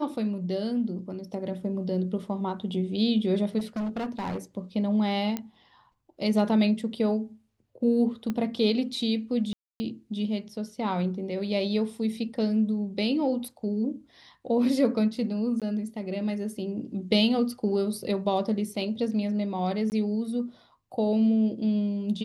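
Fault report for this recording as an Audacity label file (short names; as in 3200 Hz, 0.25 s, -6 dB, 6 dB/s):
3.580000	4.380000	clipped -27.5 dBFS
5.370000	5.370000	pop -16 dBFS
8.300000	8.300000	pop -18 dBFS
9.530000	9.800000	gap 0.27 s
15.600000	15.620000	gap 17 ms
19.900000	19.920000	gap 19 ms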